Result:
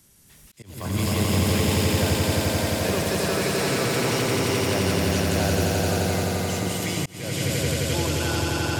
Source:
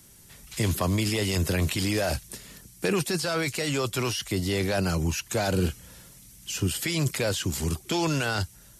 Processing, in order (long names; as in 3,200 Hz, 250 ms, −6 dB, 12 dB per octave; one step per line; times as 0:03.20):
delay with pitch and tempo change per echo 277 ms, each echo +6 semitones, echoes 3, each echo −6 dB
echo that builds up and dies away 87 ms, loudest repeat 5, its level −3 dB
volume swells 381 ms
level −4 dB